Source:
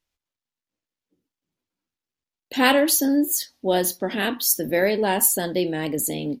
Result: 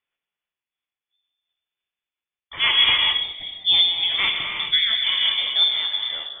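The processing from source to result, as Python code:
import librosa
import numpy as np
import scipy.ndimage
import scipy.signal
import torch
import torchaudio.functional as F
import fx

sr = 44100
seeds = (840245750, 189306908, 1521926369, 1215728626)

p1 = fx.level_steps(x, sr, step_db=12)
p2 = x + F.gain(torch.from_numpy(p1), 2.0).numpy()
p3 = scipy.signal.sosfilt(scipy.signal.cheby1(6, 6, 350.0, 'highpass', fs=sr, output='sos'), p2)
p4 = fx.air_absorb(p3, sr, metres=280.0)
p5 = fx.echo_feedback(p4, sr, ms=222, feedback_pct=43, wet_db=-23)
p6 = fx.rev_gated(p5, sr, seeds[0], gate_ms=440, shape='flat', drr_db=0.5)
p7 = fx.freq_invert(p6, sr, carrier_hz=3900)
p8 = fx.am_noise(p7, sr, seeds[1], hz=5.7, depth_pct=55)
y = F.gain(torch.from_numpy(p8), 3.0).numpy()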